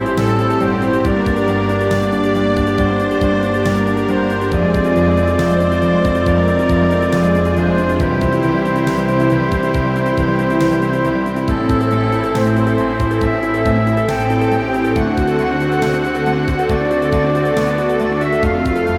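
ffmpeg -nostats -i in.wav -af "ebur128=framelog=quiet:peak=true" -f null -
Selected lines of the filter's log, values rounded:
Integrated loudness:
  I:         -15.8 LUFS
  Threshold: -25.8 LUFS
Loudness range:
  LRA:         1.6 LU
  Threshold: -35.8 LUFS
  LRA low:   -16.3 LUFS
  LRA high:  -14.8 LUFS
True peak:
  Peak:       -3.9 dBFS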